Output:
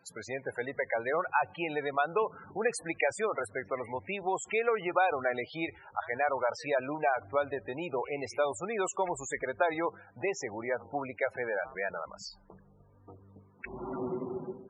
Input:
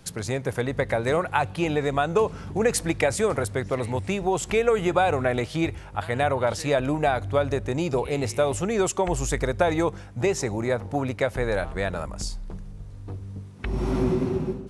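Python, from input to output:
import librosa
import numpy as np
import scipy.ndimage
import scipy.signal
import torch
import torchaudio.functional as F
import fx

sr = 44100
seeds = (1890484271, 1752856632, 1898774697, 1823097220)

y = fx.highpass(x, sr, hz=1500.0, slope=6)
y = fx.high_shelf(y, sr, hz=2900.0, db=-10.0)
y = fx.spec_topn(y, sr, count=32)
y = y * librosa.db_to_amplitude(2.5)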